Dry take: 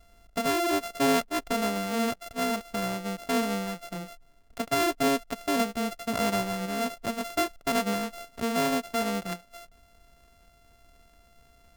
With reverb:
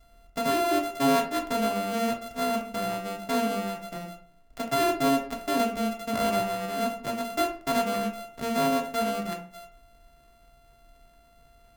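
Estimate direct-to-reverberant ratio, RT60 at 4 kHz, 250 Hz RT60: 1.5 dB, 0.25 s, 0.50 s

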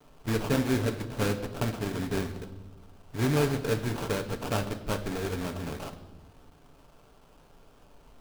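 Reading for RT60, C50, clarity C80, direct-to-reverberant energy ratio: 1.1 s, 12.0 dB, 14.0 dB, 6.0 dB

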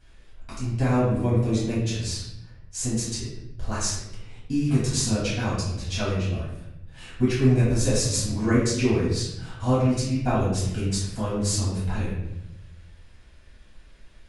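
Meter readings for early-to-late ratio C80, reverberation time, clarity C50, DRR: 4.0 dB, 0.85 s, 0.5 dB, -9.5 dB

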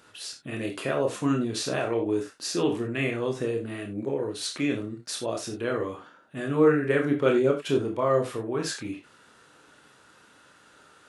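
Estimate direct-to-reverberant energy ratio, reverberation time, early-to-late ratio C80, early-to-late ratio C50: 1.5 dB, not exponential, 15.0 dB, 9.0 dB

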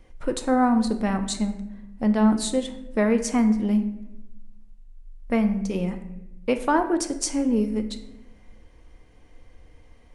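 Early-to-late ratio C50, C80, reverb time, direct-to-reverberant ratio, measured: 11.0 dB, 13.0 dB, 0.90 s, 7.0 dB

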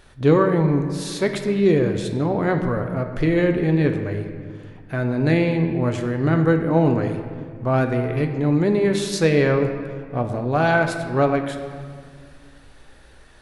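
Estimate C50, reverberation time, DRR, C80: 7.5 dB, 1.9 s, 5.0 dB, 8.5 dB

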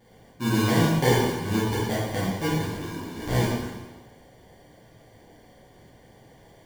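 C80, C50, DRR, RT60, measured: 2.0 dB, -0.5 dB, -10.0 dB, 1.2 s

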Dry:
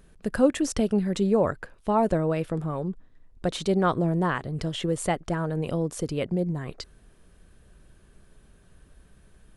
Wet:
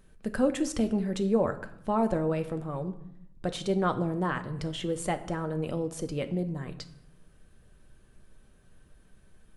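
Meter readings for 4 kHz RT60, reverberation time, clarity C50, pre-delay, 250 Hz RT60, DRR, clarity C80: 0.55 s, 0.75 s, 14.0 dB, 4 ms, 1.0 s, 7.5 dB, 17.0 dB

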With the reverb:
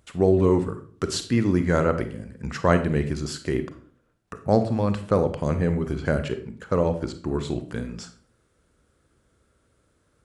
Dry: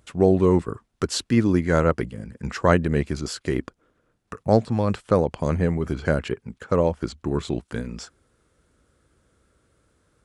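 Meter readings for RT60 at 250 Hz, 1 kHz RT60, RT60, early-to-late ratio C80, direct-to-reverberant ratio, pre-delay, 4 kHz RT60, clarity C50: 0.60 s, 0.45 s, 0.45 s, 15.5 dB, 9.0 dB, 31 ms, 0.35 s, 11.5 dB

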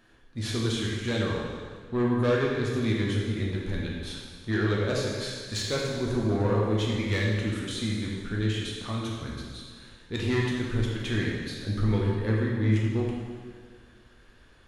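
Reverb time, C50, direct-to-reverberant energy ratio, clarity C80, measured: 1.8 s, 0.0 dB, -3.5 dB, 2.0 dB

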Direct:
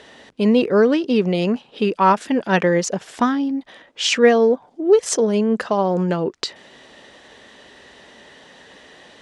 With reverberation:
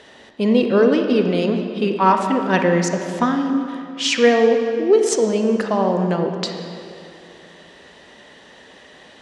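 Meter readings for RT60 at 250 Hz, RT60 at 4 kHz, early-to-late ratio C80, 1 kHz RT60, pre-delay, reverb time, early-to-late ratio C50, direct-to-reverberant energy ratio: 2.7 s, 1.8 s, 6.0 dB, 2.5 s, 33 ms, 2.6 s, 5.0 dB, 4.5 dB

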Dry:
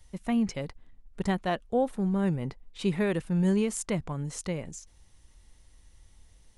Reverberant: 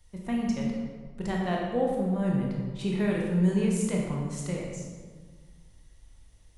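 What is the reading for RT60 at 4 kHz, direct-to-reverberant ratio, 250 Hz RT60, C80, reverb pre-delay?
1.0 s, -2.0 dB, 1.9 s, 3.0 dB, 17 ms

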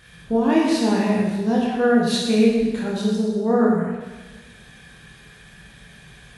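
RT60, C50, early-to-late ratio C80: 1.3 s, 1.0 dB, 3.0 dB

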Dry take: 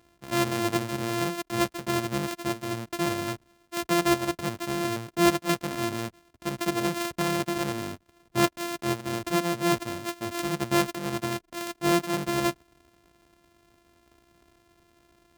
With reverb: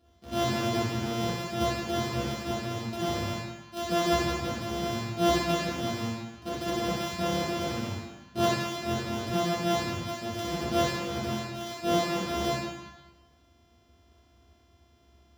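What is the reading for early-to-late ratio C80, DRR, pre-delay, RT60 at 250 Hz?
0.5 dB, -11.0 dB, 3 ms, 1.1 s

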